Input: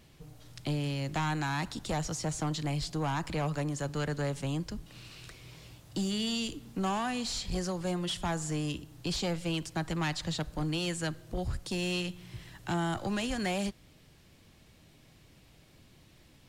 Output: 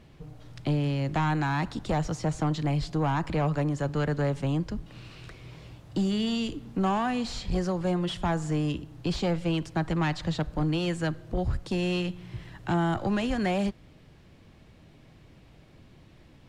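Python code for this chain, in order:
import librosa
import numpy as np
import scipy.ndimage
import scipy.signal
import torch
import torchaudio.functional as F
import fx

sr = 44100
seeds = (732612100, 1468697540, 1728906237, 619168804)

y = fx.lowpass(x, sr, hz=1700.0, slope=6)
y = F.gain(torch.from_numpy(y), 6.0).numpy()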